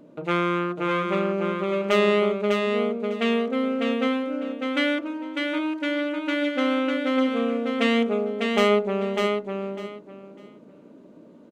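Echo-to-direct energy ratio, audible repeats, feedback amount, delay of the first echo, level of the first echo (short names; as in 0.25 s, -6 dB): -4.0 dB, 3, 20%, 0.6 s, -4.0 dB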